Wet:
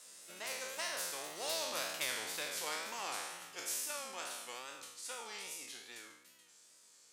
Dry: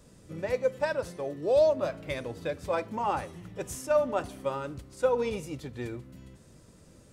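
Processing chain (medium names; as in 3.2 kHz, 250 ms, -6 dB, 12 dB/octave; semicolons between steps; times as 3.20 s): spectral sustain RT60 0.70 s; Doppler pass-by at 1.93 s, 20 m/s, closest 13 m; tilt EQ +4.5 dB/octave; wow and flutter 84 cents; frequency weighting A; spectrum-flattening compressor 2:1; trim -5 dB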